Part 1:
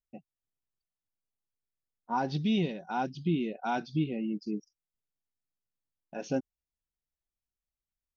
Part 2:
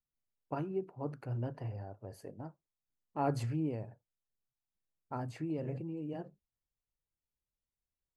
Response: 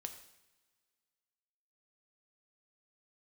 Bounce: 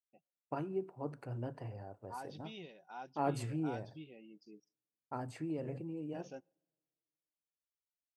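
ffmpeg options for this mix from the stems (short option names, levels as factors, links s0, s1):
-filter_complex "[0:a]equalizer=f=220:w=1.3:g=-10.5,bandreject=f=4200:w=12,volume=0.188,asplit=2[s0][s1];[s1]volume=0.075[s2];[1:a]agate=range=0.0224:threshold=0.00251:ratio=3:detection=peak,equalizer=f=8300:w=6.2:g=8,volume=0.794,asplit=2[s3][s4];[s4]volume=0.224[s5];[2:a]atrim=start_sample=2205[s6];[s2][s5]amix=inputs=2:normalize=0[s7];[s7][s6]afir=irnorm=-1:irlink=0[s8];[s0][s3][s8]amix=inputs=3:normalize=0,highpass=55,equalizer=f=77:t=o:w=2.1:g=-5.5"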